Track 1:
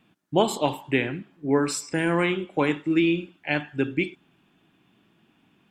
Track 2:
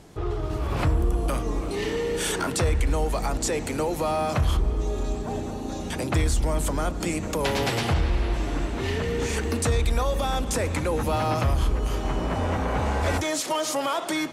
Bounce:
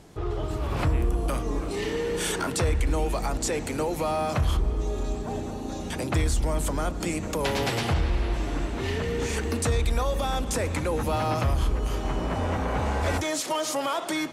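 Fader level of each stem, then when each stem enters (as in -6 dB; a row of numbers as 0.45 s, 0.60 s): -19.5 dB, -1.5 dB; 0.00 s, 0.00 s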